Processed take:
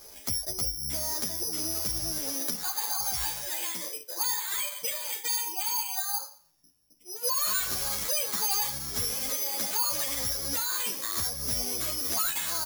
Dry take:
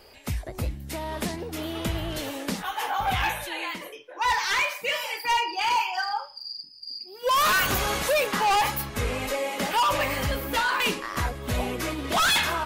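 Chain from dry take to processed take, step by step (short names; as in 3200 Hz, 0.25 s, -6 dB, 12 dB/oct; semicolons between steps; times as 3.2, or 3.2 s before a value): compressor 10:1, threshold -33 dBFS, peak gain reduction 12 dB; high shelf 5200 Hz -8.5 dB, from 7.07 s +3.5 dB; careless resampling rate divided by 8×, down filtered, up zero stuff; endless flanger 10.4 ms -2.3 Hz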